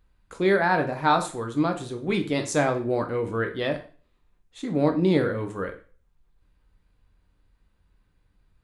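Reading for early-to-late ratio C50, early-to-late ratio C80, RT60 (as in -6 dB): 12.0 dB, 16.5 dB, 0.40 s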